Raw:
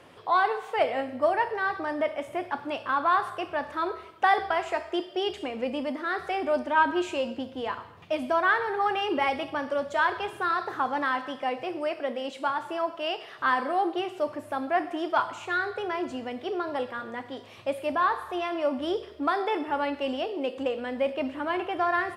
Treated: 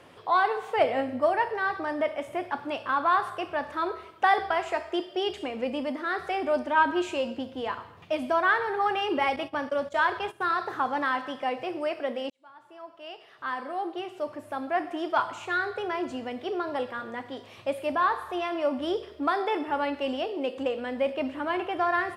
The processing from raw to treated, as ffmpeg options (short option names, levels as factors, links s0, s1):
-filter_complex "[0:a]asettb=1/sr,asplit=3[s0][s1][s2];[s0]atrim=end=0.564[s3];[s1]atrim=start=0.56:end=1.2,asetpts=PTS-STARTPTS,afade=t=in:d=0.004:c=qsin,afade=t=out:st=0.636:d=0.004:c=qsin,lowshelf=f=380:g=6[s4];[s2]atrim=start=1.196[s5];[s3][s4]acrossfade=d=0.004:c1=hsin:c2=qsin[s6];[s6][s5]acrossfade=d=0.004:c1=qsin:c2=hsin,asettb=1/sr,asplit=3[s7][s8][s9];[s7]atrim=end=9.364[s10];[s8]atrim=start=9.36:end=10.59,asetpts=PTS-STARTPTS,afade=t=in:d=0.004:c=qsin,afade=t=out:st=1.226:d=0.004:c=qsin,agate=range=0.224:threshold=0.0112:ratio=16:release=100:detection=peak[s11];[s9]atrim=start=10.586[s12];[s10][s11]acrossfade=d=0.004:c1=hsin:c2=qsin[s13];[s13][s12]acrossfade=d=0.004:c1=qsin:c2=hsin,asplit=2[s14][s15];[s14]atrim=end=12.3,asetpts=PTS-STARTPTS,afade=t=out:st=12.296:d=0.004:c=hsin[s16];[s15]atrim=start=12.3,asetpts=PTS-STARTPTS,afade=t=in:d=3.01[s17];[s16][s17]concat=n=2:v=0:a=1"